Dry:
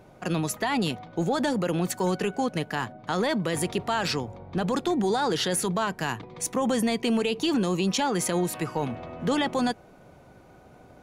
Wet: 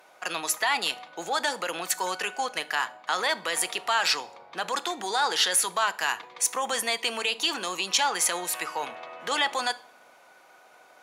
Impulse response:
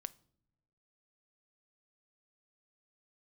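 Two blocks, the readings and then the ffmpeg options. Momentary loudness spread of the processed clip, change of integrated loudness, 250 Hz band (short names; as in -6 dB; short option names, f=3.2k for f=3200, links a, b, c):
8 LU, +0.5 dB, -17.0 dB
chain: -filter_complex "[0:a]highpass=1k[a];[1:a]atrim=start_sample=2205,asetrate=37044,aresample=44100[b];[a][b]afir=irnorm=-1:irlink=0,volume=8.5dB"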